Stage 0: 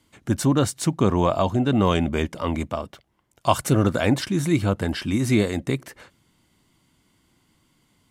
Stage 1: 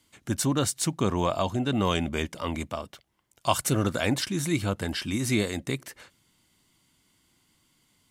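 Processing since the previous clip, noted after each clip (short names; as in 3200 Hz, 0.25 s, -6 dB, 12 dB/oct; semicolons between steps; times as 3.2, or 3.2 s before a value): high shelf 2000 Hz +8.5 dB; gain -6.5 dB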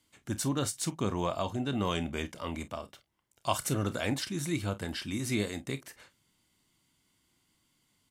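early reflections 29 ms -14 dB, 48 ms -17.5 dB; gain -6 dB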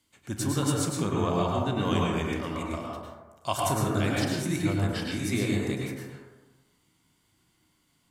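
reverb RT60 1.2 s, pre-delay 92 ms, DRR -3 dB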